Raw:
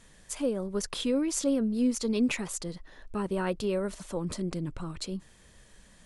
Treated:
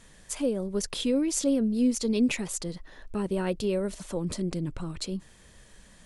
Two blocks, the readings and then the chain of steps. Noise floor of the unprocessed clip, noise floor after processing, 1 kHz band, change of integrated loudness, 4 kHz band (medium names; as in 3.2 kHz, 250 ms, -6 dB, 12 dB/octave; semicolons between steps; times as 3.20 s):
-57 dBFS, -55 dBFS, -2.0 dB, +2.0 dB, +2.0 dB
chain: dynamic bell 1.2 kHz, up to -7 dB, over -49 dBFS, Q 1.2; trim +2.5 dB